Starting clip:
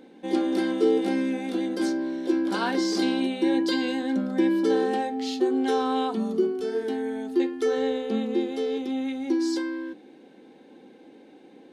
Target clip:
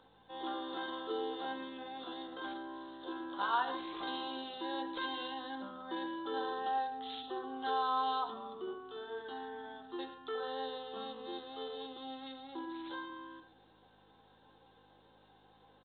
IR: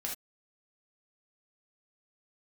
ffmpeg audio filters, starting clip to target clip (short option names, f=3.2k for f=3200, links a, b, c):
-filter_complex "[0:a]lowshelf=f=460:g=-5,aeval=exprs='val(0)+0.00631*(sin(2*PI*50*n/s)+sin(2*PI*2*50*n/s)/2+sin(2*PI*3*50*n/s)/3+sin(2*PI*4*50*n/s)/4+sin(2*PI*5*50*n/s)/5)':c=same,aderivative,bandreject=f=60:t=h:w=6,bandreject=f=120:t=h:w=6,bandreject=f=180:t=h:w=6,bandreject=f=240:t=h:w=6,bandreject=f=300:t=h:w=6,bandreject=f=360:t=h:w=6,bandreject=f=420:t=h:w=6,aecho=1:1:53|79:0.126|0.188,asplit=2[a][b];[1:a]atrim=start_sample=2205[c];[b][c]afir=irnorm=-1:irlink=0,volume=-10.5dB[d];[a][d]amix=inputs=2:normalize=0,atempo=0.74,acrossover=split=120|3100[e][f][g];[f]lowpass=f=1.1k:t=q:w=2.7[h];[g]asoftclip=type=tanh:threshold=-35.5dB[i];[e][h][i]amix=inputs=3:normalize=0,volume=7dB" -ar 8000 -c:a pcm_mulaw